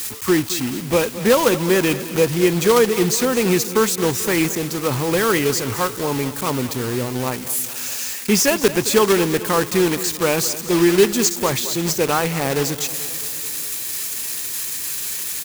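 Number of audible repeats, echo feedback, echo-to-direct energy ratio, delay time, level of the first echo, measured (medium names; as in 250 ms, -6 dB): 5, 60%, -13.0 dB, 218 ms, -15.0 dB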